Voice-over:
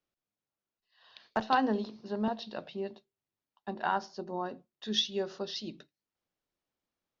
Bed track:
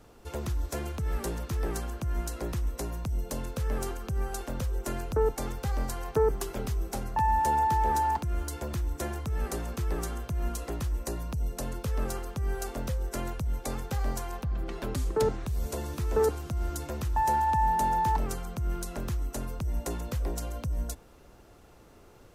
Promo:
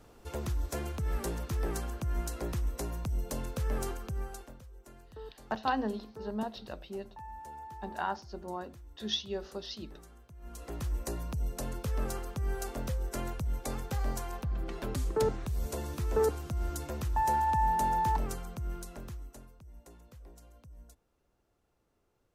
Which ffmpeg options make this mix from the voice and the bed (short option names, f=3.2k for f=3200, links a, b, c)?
-filter_complex "[0:a]adelay=4150,volume=-3.5dB[a];[1:a]volume=16dB,afade=t=out:st=3.9:d=0.7:silence=0.11885,afade=t=in:st=10.41:d=0.51:silence=0.125893,afade=t=out:st=18.11:d=1.42:silence=0.11885[b];[a][b]amix=inputs=2:normalize=0"